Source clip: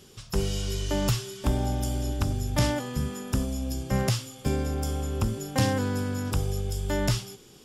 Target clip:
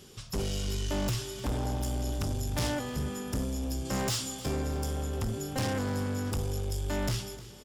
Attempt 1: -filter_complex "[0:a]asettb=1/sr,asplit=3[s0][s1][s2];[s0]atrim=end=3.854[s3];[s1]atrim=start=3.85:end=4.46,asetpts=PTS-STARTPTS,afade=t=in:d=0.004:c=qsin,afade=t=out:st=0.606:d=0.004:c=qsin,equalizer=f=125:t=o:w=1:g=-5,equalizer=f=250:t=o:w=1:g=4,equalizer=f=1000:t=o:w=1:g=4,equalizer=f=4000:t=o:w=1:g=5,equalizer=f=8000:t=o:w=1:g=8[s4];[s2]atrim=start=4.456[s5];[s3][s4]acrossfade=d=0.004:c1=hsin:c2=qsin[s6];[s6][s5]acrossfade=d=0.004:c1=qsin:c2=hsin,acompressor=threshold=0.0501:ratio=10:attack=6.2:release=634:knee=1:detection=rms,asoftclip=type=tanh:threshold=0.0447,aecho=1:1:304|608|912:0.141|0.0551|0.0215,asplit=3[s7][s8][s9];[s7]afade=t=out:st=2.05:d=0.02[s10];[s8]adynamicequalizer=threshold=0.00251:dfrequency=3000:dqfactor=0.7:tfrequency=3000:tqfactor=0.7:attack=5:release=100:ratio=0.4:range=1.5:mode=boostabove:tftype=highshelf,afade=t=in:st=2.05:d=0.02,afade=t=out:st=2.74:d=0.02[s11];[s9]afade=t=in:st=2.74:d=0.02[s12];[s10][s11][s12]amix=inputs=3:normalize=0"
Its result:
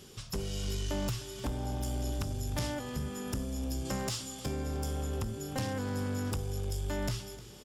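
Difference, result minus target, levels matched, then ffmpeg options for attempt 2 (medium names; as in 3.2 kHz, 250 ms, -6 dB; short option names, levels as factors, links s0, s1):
compression: peak gain reduction +10 dB
-filter_complex "[0:a]asettb=1/sr,asplit=3[s0][s1][s2];[s0]atrim=end=3.854[s3];[s1]atrim=start=3.85:end=4.46,asetpts=PTS-STARTPTS,afade=t=in:d=0.004:c=qsin,afade=t=out:st=0.606:d=0.004:c=qsin,equalizer=f=125:t=o:w=1:g=-5,equalizer=f=250:t=o:w=1:g=4,equalizer=f=1000:t=o:w=1:g=4,equalizer=f=4000:t=o:w=1:g=5,equalizer=f=8000:t=o:w=1:g=8[s4];[s2]atrim=start=4.456[s5];[s3][s4]acrossfade=d=0.004:c1=hsin:c2=qsin[s6];[s6][s5]acrossfade=d=0.004:c1=qsin:c2=hsin,asoftclip=type=tanh:threshold=0.0447,aecho=1:1:304|608|912:0.141|0.0551|0.0215,asplit=3[s7][s8][s9];[s7]afade=t=out:st=2.05:d=0.02[s10];[s8]adynamicequalizer=threshold=0.00251:dfrequency=3000:dqfactor=0.7:tfrequency=3000:tqfactor=0.7:attack=5:release=100:ratio=0.4:range=1.5:mode=boostabove:tftype=highshelf,afade=t=in:st=2.05:d=0.02,afade=t=out:st=2.74:d=0.02[s11];[s9]afade=t=in:st=2.74:d=0.02[s12];[s10][s11][s12]amix=inputs=3:normalize=0"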